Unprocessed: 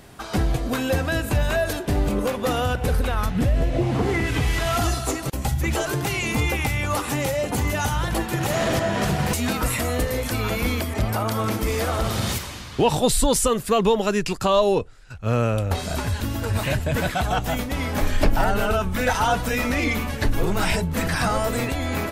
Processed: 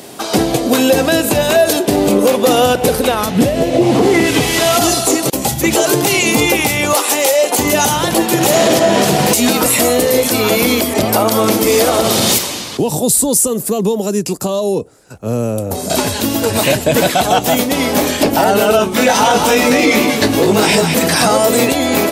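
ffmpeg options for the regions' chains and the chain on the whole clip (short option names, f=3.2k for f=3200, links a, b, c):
-filter_complex "[0:a]asettb=1/sr,asplit=3[a][b][c];[a]atrim=end=6.934[d];[b]atrim=start=6.93:end=7.59,asetpts=PTS-STARTPTS,afade=t=in:d=0.004:c=qsin,afade=t=out:st=0.656:d=0.004:c=qsin,highpass=510,asoftclip=type=hard:threshold=-18dB[e];[c]atrim=start=7.586[f];[d][e]acrossfade=d=0.004:c1=hsin:c2=qsin[g];[g][f]acrossfade=d=0.004:c1=qsin:c2=hsin,asettb=1/sr,asplit=3[h][i][j];[h]atrim=end=12.774[k];[i]atrim=start=12.77:end=15.9,asetpts=PTS-STARTPTS,afade=t=in:d=0.004:c=qsin,afade=t=out:st=3.126:d=0.004:c=qsin,acrossover=split=200|3000[l][m][n];[m]acompressor=threshold=-34dB:ratio=2.5:attack=3.2:release=140:knee=2.83:detection=peak[o];[l][o][n]amix=inputs=3:normalize=0,equalizer=f=3.3k:t=o:w=2:g=-14.5[p];[j]atrim=start=15.896[q];[k][p]acrossfade=d=0.004:c1=hsin:c2=qsin[r];[r][q]acrossfade=d=0.004:c1=qsin:c2=hsin,asettb=1/sr,asplit=3[s][t][u];[s]atrim=end=18.774[v];[t]atrim=start=18.77:end=20.95,asetpts=PTS-STARTPTS,afade=t=in:d=0.004:c=qsin,afade=t=out:st=2.176:d=0.004:c=qsin,highshelf=f=11k:g=-9,asplit=2[w][x];[x]adelay=19,volume=-3.5dB[y];[w][y]amix=inputs=2:normalize=0,atrim=end_sample=96138,aecho=1:1:208:0.398,atrim=end_sample=96138[z];[u]atrim=start=20.946[aa];[v][z]acrossfade=d=0.004:c1=hsin:c2=qsin[ab];[ab][aa]acrossfade=d=0.004:c1=qsin:c2=hsin,highpass=290,equalizer=f=1.5k:t=o:w=1.7:g=-10.5,alimiter=level_in=19dB:limit=-1dB:release=50:level=0:latency=1,volume=-1dB"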